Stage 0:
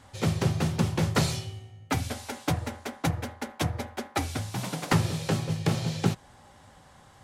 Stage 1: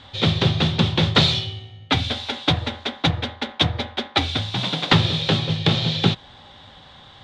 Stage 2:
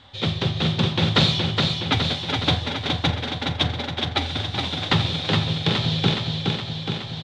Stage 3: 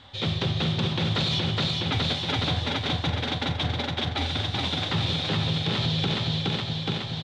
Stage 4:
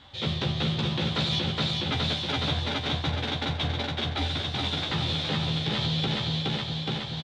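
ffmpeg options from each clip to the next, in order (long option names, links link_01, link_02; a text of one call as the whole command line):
ffmpeg -i in.wav -af "lowpass=frequency=3600:width_type=q:width=6.6,volume=6dB" out.wav
ffmpeg -i in.wav -af "aecho=1:1:418|836|1254|1672|2090|2508|2926|3344:0.631|0.372|0.22|0.13|0.0765|0.0451|0.0266|0.0157,dynaudnorm=framelen=190:gausssize=9:maxgain=11.5dB,volume=-5dB" out.wav
ffmpeg -i in.wav -af "alimiter=limit=-16.5dB:level=0:latency=1:release=45" out.wav
ffmpeg -i in.wav -filter_complex "[0:a]asplit=2[link_01][link_02];[link_02]adelay=14,volume=-3.5dB[link_03];[link_01][link_03]amix=inputs=2:normalize=0,volume=-3dB" out.wav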